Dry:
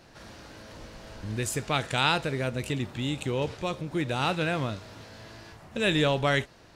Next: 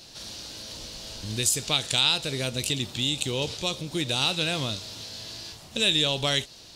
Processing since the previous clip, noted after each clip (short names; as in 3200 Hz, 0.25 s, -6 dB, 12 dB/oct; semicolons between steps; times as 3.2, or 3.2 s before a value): resonant high shelf 2600 Hz +13 dB, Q 1.5; compressor 2:1, threshold -23 dBFS, peak gain reduction 7.5 dB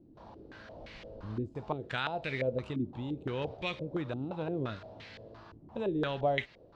stepped low-pass 5.8 Hz 300–2100 Hz; gain -6.5 dB